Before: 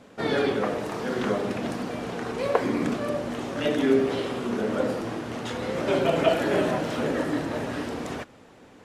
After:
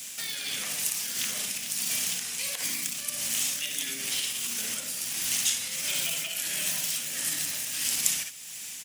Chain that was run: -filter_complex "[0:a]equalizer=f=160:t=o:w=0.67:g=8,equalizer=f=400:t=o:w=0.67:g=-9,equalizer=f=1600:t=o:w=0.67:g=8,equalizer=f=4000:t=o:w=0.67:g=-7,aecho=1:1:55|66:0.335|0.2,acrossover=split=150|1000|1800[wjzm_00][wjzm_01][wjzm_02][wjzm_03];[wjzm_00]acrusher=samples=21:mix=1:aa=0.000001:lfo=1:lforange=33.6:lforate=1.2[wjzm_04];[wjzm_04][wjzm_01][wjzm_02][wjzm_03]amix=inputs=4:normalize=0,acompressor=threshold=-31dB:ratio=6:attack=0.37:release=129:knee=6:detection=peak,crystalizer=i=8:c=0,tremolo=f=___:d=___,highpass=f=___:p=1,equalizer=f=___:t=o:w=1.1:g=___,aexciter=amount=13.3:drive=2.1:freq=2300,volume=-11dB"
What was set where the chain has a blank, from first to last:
1.5, 0.47, 43, 66, 3